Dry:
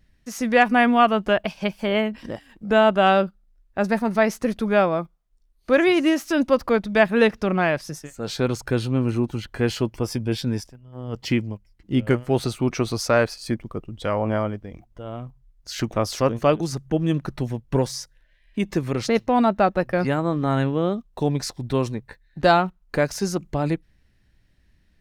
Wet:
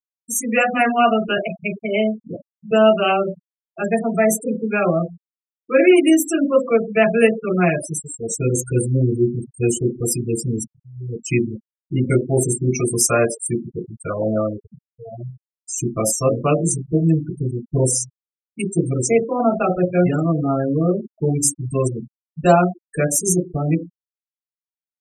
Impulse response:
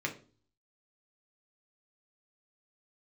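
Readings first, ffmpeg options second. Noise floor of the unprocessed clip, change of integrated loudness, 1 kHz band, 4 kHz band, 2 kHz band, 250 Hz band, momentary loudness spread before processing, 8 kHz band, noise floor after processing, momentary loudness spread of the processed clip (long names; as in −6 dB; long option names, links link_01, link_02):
−61 dBFS, +3.0 dB, 0.0 dB, −1.5 dB, 0.0 dB, +3.0 dB, 16 LU, +15.0 dB, below −85 dBFS, 13 LU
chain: -filter_complex "[0:a]acrossover=split=120|1500|2400[link_01][link_02][link_03][link_04];[link_04]aexciter=amount=12.4:drive=8:freq=6400[link_05];[link_01][link_02][link_03][link_05]amix=inputs=4:normalize=0[link_06];[1:a]atrim=start_sample=2205,asetrate=52920,aresample=44100[link_07];[link_06][link_07]afir=irnorm=-1:irlink=0,afftfilt=real='re*gte(hypot(re,im),0.141)':imag='im*gte(hypot(re,im),0.141)':win_size=1024:overlap=0.75,volume=-1dB"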